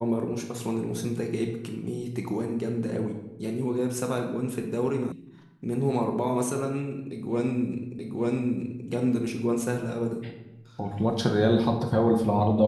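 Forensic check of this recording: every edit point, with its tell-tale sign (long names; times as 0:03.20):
0:05.12: cut off before it has died away
0:07.99: the same again, the last 0.88 s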